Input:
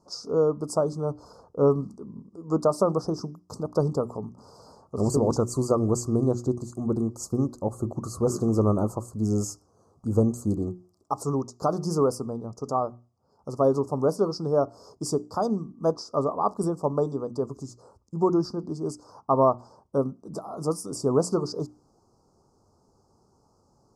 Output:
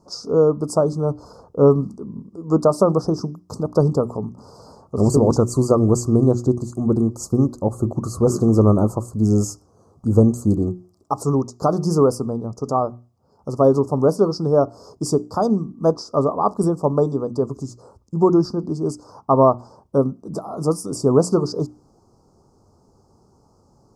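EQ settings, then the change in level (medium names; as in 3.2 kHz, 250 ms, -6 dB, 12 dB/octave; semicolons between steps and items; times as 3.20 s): bass shelf 480 Hz +4.5 dB; +4.5 dB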